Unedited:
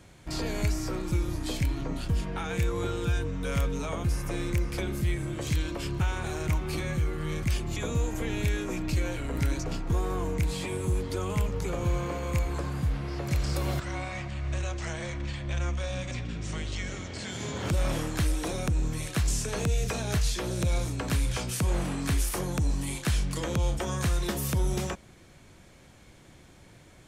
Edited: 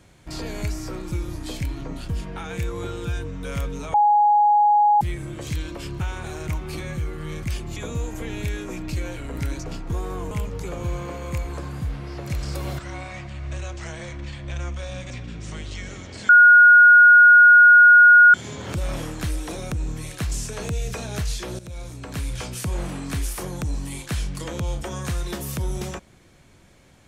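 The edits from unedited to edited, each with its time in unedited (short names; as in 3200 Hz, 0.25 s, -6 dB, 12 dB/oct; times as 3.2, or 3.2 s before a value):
3.94–5.01 bleep 832 Hz -13 dBFS
10.31–11.32 cut
17.3 add tone 1440 Hz -7 dBFS 2.05 s
20.55–21.39 fade in, from -13.5 dB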